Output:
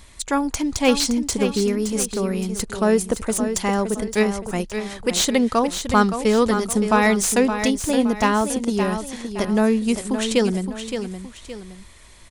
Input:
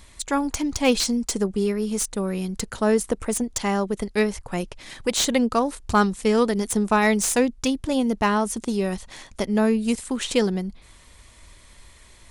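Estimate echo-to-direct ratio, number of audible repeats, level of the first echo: −8.0 dB, 2, −8.5 dB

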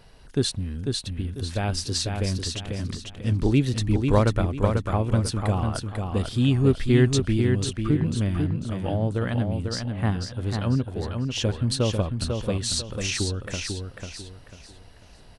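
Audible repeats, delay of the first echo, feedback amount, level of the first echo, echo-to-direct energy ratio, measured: 4, 495 ms, 32%, −5.0 dB, −4.5 dB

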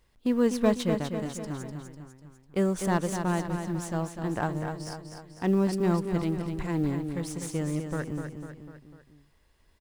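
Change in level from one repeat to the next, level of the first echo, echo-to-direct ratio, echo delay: −5.5 dB, −7.0 dB, −5.5 dB, 249 ms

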